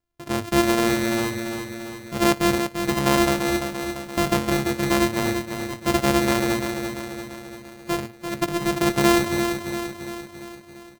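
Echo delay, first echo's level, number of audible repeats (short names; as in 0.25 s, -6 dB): 0.342 s, -7.0 dB, 6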